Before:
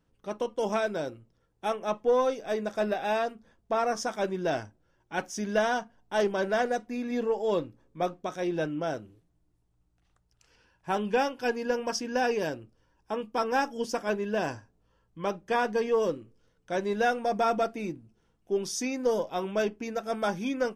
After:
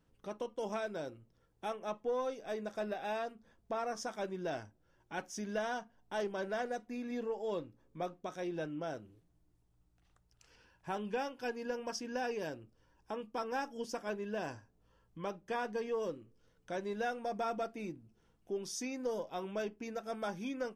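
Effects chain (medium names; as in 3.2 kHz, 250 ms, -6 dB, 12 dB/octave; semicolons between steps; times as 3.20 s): compression 1.5:1, threshold -50 dBFS, peak gain reduction 10.5 dB; trim -1 dB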